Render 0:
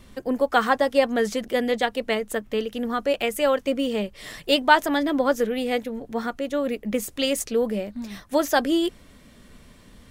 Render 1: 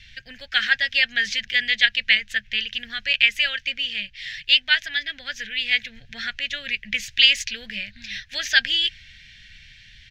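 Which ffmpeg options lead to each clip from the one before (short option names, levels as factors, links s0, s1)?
-af "firequalizer=gain_entry='entry(120,0);entry(270,-26);entry(400,-29);entry(670,-20);entry(1100,-27);entry(1600,9);entry(2500,14);entry(3800,11);entry(6100,4);entry(8800,-16)':delay=0.05:min_phase=1,dynaudnorm=f=150:g=13:m=3.76,volume=0.891"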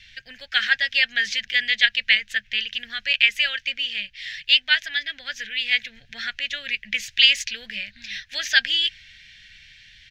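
-af "lowshelf=f=320:g=-7.5"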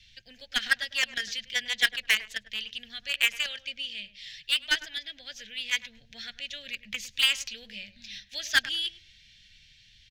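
-filter_complex "[0:a]acrossover=split=170|1000|2600[s0][s1][s2][s3];[s2]acrusher=bits=2:mix=0:aa=0.5[s4];[s3]asoftclip=type=tanh:threshold=0.126[s5];[s0][s1][s4][s5]amix=inputs=4:normalize=0,asplit=2[s6][s7];[s7]adelay=103,lowpass=f=1000:p=1,volume=0.251,asplit=2[s8][s9];[s9]adelay=103,lowpass=f=1000:p=1,volume=0.22,asplit=2[s10][s11];[s11]adelay=103,lowpass=f=1000:p=1,volume=0.22[s12];[s6][s8][s10][s12]amix=inputs=4:normalize=0,volume=0.596"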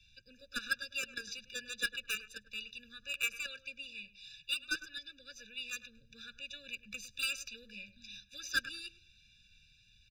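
-filter_complex "[0:a]acrossover=split=240|1800|2500[s0][s1][s2][s3];[s2]aeval=exprs='0.0178*(abs(mod(val(0)/0.0178+3,4)-2)-1)':c=same[s4];[s0][s1][s4][s3]amix=inputs=4:normalize=0,afftfilt=real='re*eq(mod(floor(b*sr/1024/580),2),0)':imag='im*eq(mod(floor(b*sr/1024/580),2),0)':win_size=1024:overlap=0.75,volume=0.562"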